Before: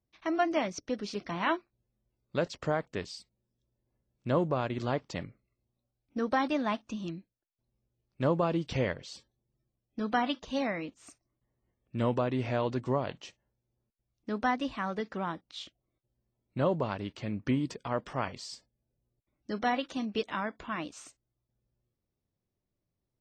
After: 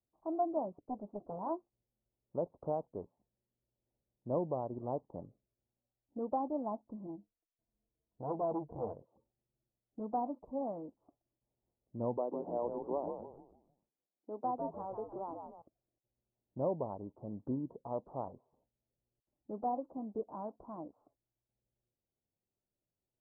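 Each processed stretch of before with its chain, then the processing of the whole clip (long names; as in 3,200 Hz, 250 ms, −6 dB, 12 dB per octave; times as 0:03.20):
0:00.78–0:01.39: parametric band 1,900 Hz −6 dB 0.65 octaves + highs frequency-modulated by the lows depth 0.59 ms
0:07.05–0:08.94: EQ curve with evenly spaced ripples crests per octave 1.8, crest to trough 14 dB + saturating transformer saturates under 1,700 Hz
0:12.17–0:15.62: high-pass filter 270 Hz 24 dB per octave + echo with shifted repeats 150 ms, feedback 38%, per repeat −83 Hz, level −6 dB
whole clip: Butterworth low-pass 920 Hz 48 dB per octave; low-shelf EQ 320 Hz −9 dB; level −2.5 dB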